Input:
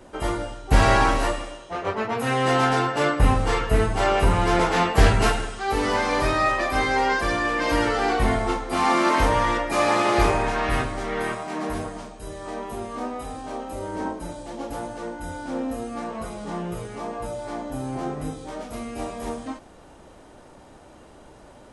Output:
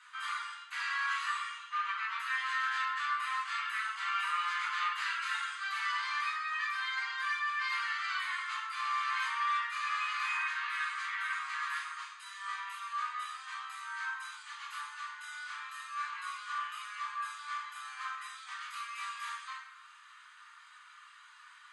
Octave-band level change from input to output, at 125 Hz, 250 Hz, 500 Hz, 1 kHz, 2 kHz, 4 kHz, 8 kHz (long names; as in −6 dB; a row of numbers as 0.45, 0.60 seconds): below −40 dB, below −40 dB, below −40 dB, −11.0 dB, −6.0 dB, −8.0 dB, −13.5 dB